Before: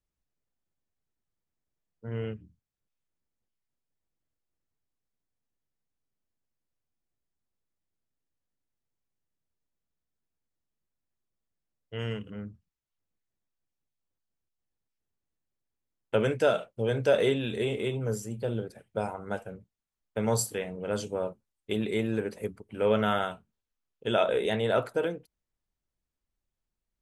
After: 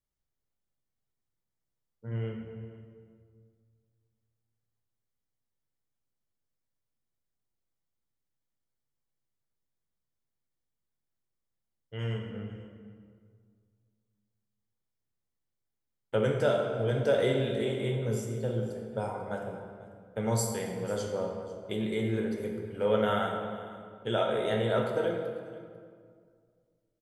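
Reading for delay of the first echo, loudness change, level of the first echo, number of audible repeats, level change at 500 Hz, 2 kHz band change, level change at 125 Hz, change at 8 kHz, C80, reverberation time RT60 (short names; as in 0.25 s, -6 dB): 0.494 s, -1.5 dB, -19.0 dB, 1, -1.0 dB, -2.5 dB, +1.5 dB, -2.5 dB, 4.5 dB, 2.1 s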